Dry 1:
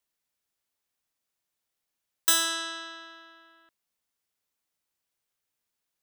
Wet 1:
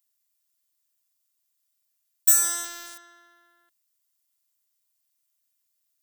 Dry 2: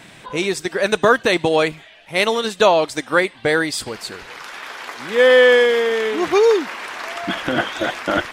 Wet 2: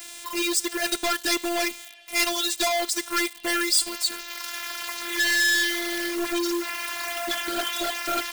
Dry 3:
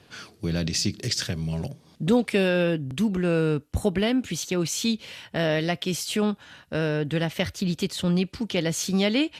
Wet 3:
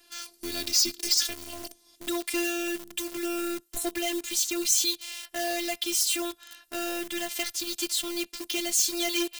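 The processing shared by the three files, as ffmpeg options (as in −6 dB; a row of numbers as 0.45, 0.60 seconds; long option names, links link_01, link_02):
-filter_complex "[0:a]lowshelf=frequency=80:gain=-10,afftfilt=real='hypot(re,im)*cos(PI*b)':imag='0':win_size=512:overlap=0.75,asplit=2[link_01][link_02];[link_02]acrusher=bits=5:mix=0:aa=0.000001,volume=-7dB[link_03];[link_01][link_03]amix=inputs=2:normalize=0,volume=18.5dB,asoftclip=hard,volume=-18.5dB,crystalizer=i=5:c=0,volume=-6dB"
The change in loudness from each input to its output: +6.0, −7.5, −1.5 LU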